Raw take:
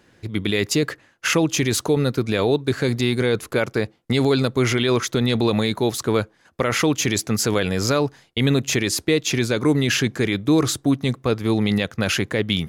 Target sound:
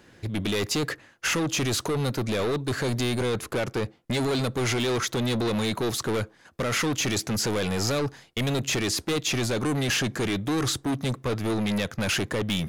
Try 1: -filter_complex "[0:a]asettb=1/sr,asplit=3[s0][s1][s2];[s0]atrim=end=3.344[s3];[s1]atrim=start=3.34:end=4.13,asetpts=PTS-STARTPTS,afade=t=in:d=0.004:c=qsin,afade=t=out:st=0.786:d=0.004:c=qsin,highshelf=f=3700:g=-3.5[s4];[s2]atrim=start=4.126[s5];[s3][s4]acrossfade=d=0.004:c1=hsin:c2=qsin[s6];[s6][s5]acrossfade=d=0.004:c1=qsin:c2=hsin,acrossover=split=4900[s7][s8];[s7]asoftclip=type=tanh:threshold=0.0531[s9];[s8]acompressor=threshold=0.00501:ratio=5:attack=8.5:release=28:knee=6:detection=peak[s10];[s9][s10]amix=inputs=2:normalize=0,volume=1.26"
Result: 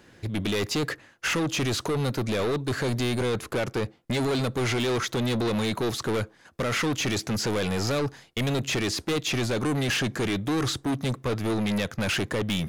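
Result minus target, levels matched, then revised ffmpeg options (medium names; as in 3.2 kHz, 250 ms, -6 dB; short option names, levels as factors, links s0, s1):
compression: peak gain reduction +8 dB
-filter_complex "[0:a]asettb=1/sr,asplit=3[s0][s1][s2];[s0]atrim=end=3.344[s3];[s1]atrim=start=3.34:end=4.13,asetpts=PTS-STARTPTS,afade=t=in:d=0.004:c=qsin,afade=t=out:st=0.786:d=0.004:c=qsin,highshelf=f=3700:g=-3.5[s4];[s2]atrim=start=4.126[s5];[s3][s4]acrossfade=d=0.004:c1=hsin:c2=qsin[s6];[s6][s5]acrossfade=d=0.004:c1=qsin:c2=hsin,acrossover=split=4900[s7][s8];[s7]asoftclip=type=tanh:threshold=0.0531[s9];[s8]acompressor=threshold=0.0158:ratio=5:attack=8.5:release=28:knee=6:detection=peak[s10];[s9][s10]amix=inputs=2:normalize=0,volume=1.26"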